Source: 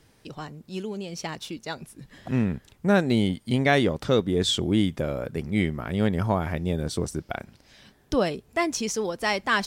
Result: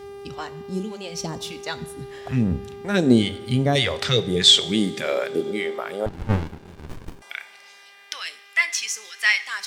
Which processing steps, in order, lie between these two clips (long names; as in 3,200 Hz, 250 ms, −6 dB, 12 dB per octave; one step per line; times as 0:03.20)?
mains-hum notches 50/100 Hz
0:02.94–0:03.29: gain on a spectral selection 230–8,900 Hz +7 dB
0:03.75–0:05.30: octave-band graphic EQ 250/500/2,000/4,000/8,000 Hz −12/+6/+10/+8/+6 dB
in parallel at 0 dB: downward compressor, threshold −28 dBFS, peak gain reduction 17 dB
on the sum: all-pass phaser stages 2, 1.7 Hz, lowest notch 130–2,600 Hz
hum with harmonics 400 Hz, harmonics 15, −40 dBFS −9 dB per octave
high-pass filter sweep 61 Hz → 2,000 Hz, 0:03.40–0:07.38
on a send at −12 dB: convolution reverb, pre-delay 3 ms
0:06.06–0:07.22: on the sum: windowed peak hold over 65 samples
level −1 dB